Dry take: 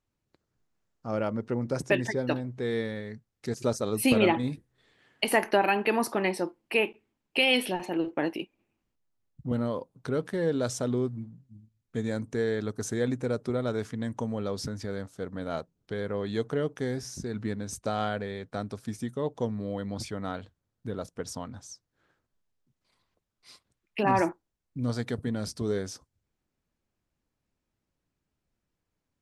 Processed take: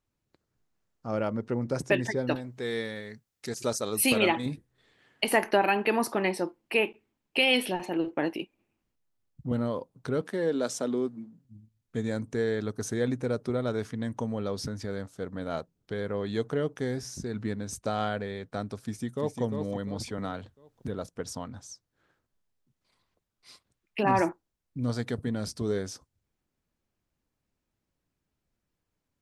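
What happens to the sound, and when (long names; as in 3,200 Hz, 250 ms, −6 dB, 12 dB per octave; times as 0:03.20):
0:02.35–0:04.46: spectral tilt +2 dB per octave
0:10.21–0:11.45: high-pass filter 190 Hz 24 dB per octave
0:12.64–0:14.78: notch filter 7,400 Hz
0:18.82–0:19.41: delay throw 350 ms, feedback 35%, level −5.5 dB
0:20.18–0:20.88: multiband upward and downward compressor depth 70%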